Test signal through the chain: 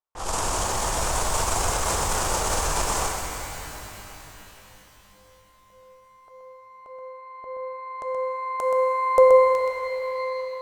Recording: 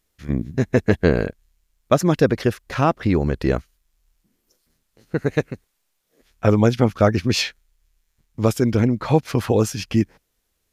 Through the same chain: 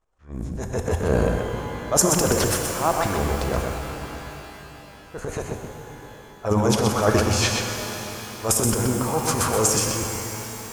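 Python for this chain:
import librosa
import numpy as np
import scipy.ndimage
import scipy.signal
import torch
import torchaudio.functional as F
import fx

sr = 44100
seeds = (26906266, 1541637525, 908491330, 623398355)

y = fx.env_lowpass(x, sr, base_hz=2100.0, full_db=-16.0)
y = fx.graphic_eq(y, sr, hz=(125, 250, 1000, 2000, 4000, 8000), db=(-10, -12, 6, -11, -8, 10))
y = fx.transient(y, sr, attack_db=-9, sustain_db=12)
y = y + 10.0 ** (-5.5 / 20.0) * np.pad(y, (int(126 * sr / 1000.0), 0))[:len(y)]
y = fx.rev_shimmer(y, sr, seeds[0], rt60_s=3.9, semitones=12, shimmer_db=-8, drr_db=4.0)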